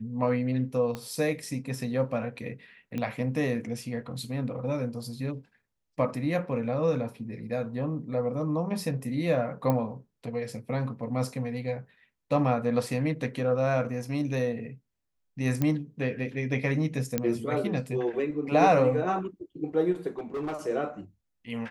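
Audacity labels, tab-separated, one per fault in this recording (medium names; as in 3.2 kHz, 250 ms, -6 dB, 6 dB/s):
0.950000	0.950000	pop -20 dBFS
2.980000	2.980000	pop -20 dBFS
9.700000	9.700000	pop -14 dBFS
15.620000	15.620000	pop -14 dBFS
17.180000	17.180000	pop -12 dBFS
20.090000	20.570000	clipped -29 dBFS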